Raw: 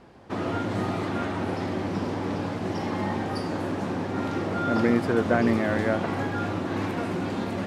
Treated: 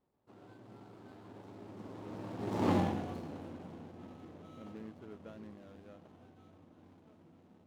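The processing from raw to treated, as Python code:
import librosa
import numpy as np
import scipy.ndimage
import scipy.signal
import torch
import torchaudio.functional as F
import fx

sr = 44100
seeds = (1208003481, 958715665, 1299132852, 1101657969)

y = scipy.ndimage.median_filter(x, 25, mode='constant')
y = fx.doppler_pass(y, sr, speed_mps=29, closest_m=2.6, pass_at_s=2.71)
y = y * 10.0 ** (1.5 / 20.0)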